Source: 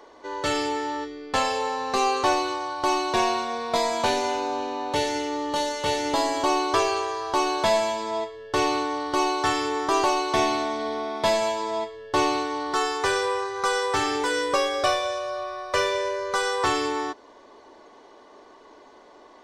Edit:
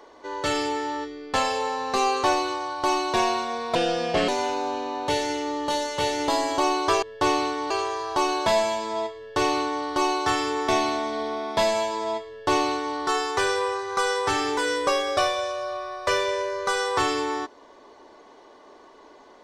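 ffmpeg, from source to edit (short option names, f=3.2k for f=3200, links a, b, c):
-filter_complex "[0:a]asplit=6[a][b][c][d][e][f];[a]atrim=end=3.754[g];[b]atrim=start=3.75:end=4.14,asetpts=PTS-STARTPTS,asetrate=32193,aresample=44100,atrim=end_sample=23560,asetpts=PTS-STARTPTS[h];[c]atrim=start=4.136:end=6.882[i];[d]atrim=start=11.948:end=12.632[j];[e]atrim=start=6.878:end=9.862[k];[f]atrim=start=10.348[l];[g][h]acrossfade=d=0.004:c1=hsin:c2=hsin[m];[m][i]acrossfade=d=0.004:c1=hsin:c2=hsin[n];[n][j]acrossfade=d=0.004:c1=hsin:c2=hsin[o];[o][k]acrossfade=d=0.004:c1=hsin:c2=hsin[p];[p][l]acrossfade=d=0.004:c1=hsin:c2=hsin"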